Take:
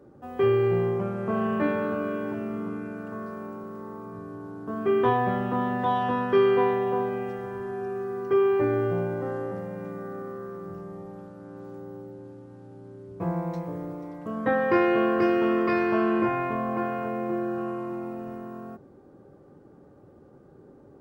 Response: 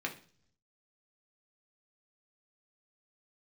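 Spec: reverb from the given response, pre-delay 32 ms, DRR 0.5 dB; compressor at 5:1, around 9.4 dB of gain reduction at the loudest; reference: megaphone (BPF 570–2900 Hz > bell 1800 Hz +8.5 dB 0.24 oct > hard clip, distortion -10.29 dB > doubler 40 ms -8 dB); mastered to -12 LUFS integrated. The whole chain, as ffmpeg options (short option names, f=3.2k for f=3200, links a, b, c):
-filter_complex "[0:a]acompressor=threshold=-28dB:ratio=5,asplit=2[a][b];[1:a]atrim=start_sample=2205,adelay=32[c];[b][c]afir=irnorm=-1:irlink=0,volume=-4dB[d];[a][d]amix=inputs=2:normalize=0,highpass=570,lowpass=2.9k,equalizer=f=1.8k:t=o:w=0.24:g=8.5,asoftclip=type=hard:threshold=-32dB,asplit=2[e][f];[f]adelay=40,volume=-8dB[g];[e][g]amix=inputs=2:normalize=0,volume=24dB"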